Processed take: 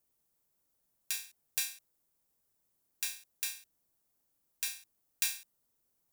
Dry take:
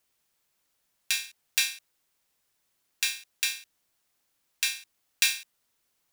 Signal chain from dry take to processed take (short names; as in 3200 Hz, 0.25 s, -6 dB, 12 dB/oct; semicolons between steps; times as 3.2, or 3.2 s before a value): bell 2700 Hz -14 dB 2.9 oct